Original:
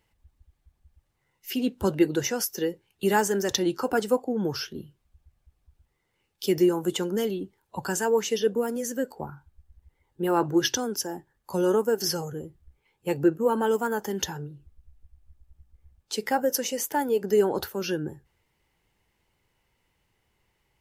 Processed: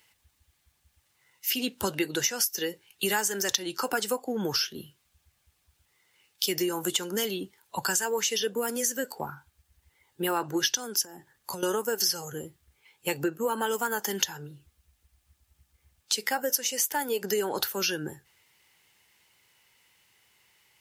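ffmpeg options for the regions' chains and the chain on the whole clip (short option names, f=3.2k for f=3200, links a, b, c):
-filter_complex "[0:a]asettb=1/sr,asplit=3[a][b][c];[a]atrim=end=11.044[d];[b]atrim=start=11.04:end=11.63,asetpts=PTS-STARTPTS,afade=t=in:d=0.004:c=qsin,afade=t=out:st=0.586:d=0.004:c=qsin,lowshelf=f=480:g=5.5,acompressor=threshold=-36dB:ratio=6:attack=3.2:release=140:knee=1:detection=peak[e];[c]atrim=start=11.626[f];[d][e]acrossfade=d=0.004:c1=hsin:c2=qsin[g];[g][f]acrossfade=d=0.004:c1=qsin:c2=hsin,highpass=84,tiltshelf=f=1.1k:g=-8.5,acompressor=threshold=-31dB:ratio=4,volume=5.5dB"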